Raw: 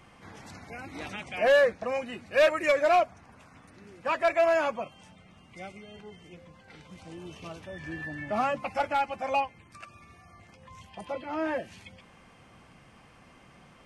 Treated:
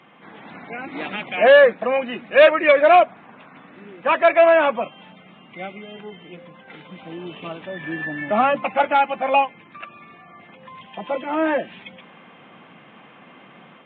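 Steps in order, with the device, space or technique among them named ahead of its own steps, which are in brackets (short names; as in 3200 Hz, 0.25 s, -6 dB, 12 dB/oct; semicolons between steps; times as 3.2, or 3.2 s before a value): Bluetooth headset (HPF 170 Hz 24 dB/oct; AGC gain up to 5 dB; downsampling 8000 Hz; gain +5 dB; SBC 64 kbps 16000 Hz)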